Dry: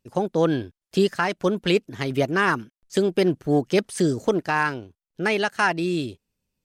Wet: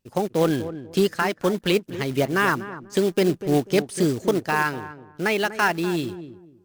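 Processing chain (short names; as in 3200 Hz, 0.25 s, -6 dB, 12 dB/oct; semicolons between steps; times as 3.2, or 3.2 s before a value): short-mantissa float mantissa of 2-bit; darkening echo 0.245 s, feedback 26%, low-pass 970 Hz, level -11.5 dB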